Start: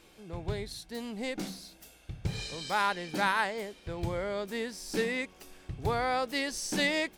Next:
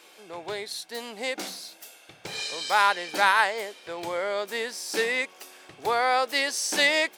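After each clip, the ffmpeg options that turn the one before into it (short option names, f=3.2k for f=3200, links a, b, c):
-af "highpass=520,volume=8dB"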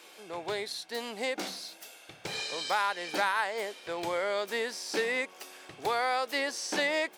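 -filter_complex "[0:a]acrossover=split=1700|6000[a][b][c];[a]acompressor=threshold=-28dB:ratio=4[d];[b]acompressor=threshold=-36dB:ratio=4[e];[c]acompressor=threshold=-49dB:ratio=4[f];[d][e][f]amix=inputs=3:normalize=0"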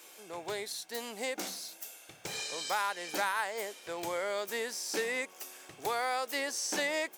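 -af "aexciter=amount=1.8:drive=7.9:freq=5.9k,volume=-3.5dB"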